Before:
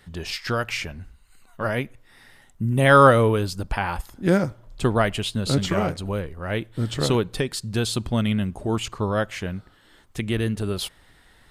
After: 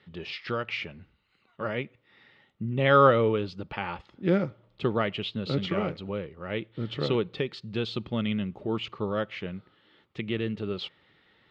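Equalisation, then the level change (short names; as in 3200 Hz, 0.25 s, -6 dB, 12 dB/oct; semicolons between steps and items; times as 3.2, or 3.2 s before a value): speaker cabinet 160–3600 Hz, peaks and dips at 260 Hz -5 dB, 710 Hz -9 dB, 1600 Hz -8 dB; notch 1000 Hz, Q 7.6; -2.5 dB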